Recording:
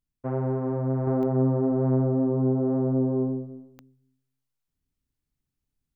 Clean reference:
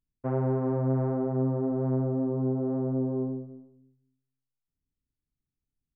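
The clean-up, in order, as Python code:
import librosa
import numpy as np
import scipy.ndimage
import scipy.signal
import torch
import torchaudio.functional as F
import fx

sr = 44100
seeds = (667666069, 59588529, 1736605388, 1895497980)

y = fx.fix_declick_ar(x, sr, threshold=10.0)
y = fx.fix_level(y, sr, at_s=1.07, step_db=-4.5)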